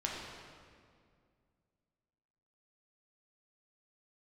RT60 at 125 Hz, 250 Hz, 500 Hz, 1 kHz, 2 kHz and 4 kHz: 2.9, 2.7, 2.3, 2.0, 1.8, 1.5 seconds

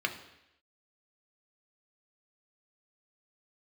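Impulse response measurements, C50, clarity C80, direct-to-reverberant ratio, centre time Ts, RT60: 10.5 dB, 13.5 dB, 4.0 dB, 15 ms, 0.85 s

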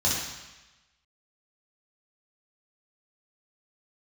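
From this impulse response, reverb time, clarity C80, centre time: 1.1 s, 3.5 dB, 69 ms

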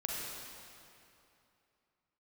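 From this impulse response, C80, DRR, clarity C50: −0.5 dB, −3.5 dB, −2.5 dB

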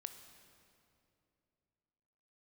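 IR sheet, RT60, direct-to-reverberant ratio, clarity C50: 2.7 s, 8.0 dB, 9.0 dB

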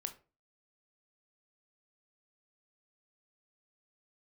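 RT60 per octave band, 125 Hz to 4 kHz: 0.45, 0.40, 0.35, 0.30, 0.25, 0.20 seconds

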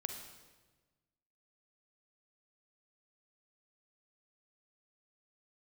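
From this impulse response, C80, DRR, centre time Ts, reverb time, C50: 7.5 dB, 4.5 dB, 33 ms, 1.3 s, 5.5 dB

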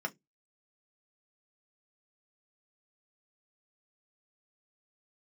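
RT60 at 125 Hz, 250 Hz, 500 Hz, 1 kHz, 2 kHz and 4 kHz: 0.30, 0.25, 0.20, 0.10, 0.15, 0.15 seconds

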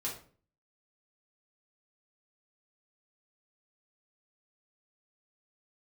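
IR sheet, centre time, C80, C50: 28 ms, 12.0 dB, 6.5 dB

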